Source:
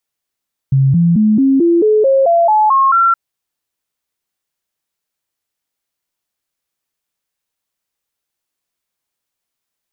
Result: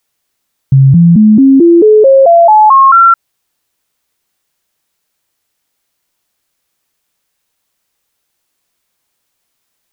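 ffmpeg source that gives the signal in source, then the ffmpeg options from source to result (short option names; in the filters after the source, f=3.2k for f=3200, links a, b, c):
-f lavfi -i "aevalsrc='0.422*clip(min(mod(t,0.22),0.22-mod(t,0.22))/0.005,0,1)*sin(2*PI*135*pow(2,floor(t/0.22)/3)*mod(t,0.22))':d=2.42:s=44100"
-af "alimiter=level_in=12dB:limit=-1dB:release=50:level=0:latency=1"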